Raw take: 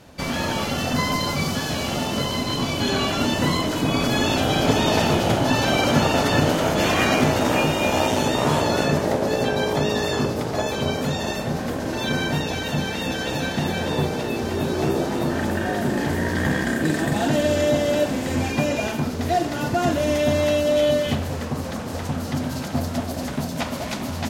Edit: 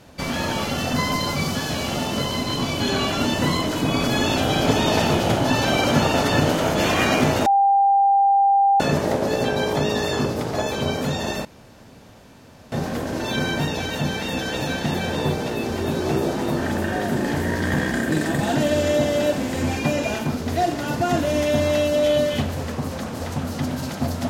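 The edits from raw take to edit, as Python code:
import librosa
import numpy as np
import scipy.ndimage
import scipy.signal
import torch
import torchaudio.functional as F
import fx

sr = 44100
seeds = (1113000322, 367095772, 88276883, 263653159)

y = fx.edit(x, sr, fx.bleep(start_s=7.46, length_s=1.34, hz=794.0, db=-13.0),
    fx.insert_room_tone(at_s=11.45, length_s=1.27), tone=tone)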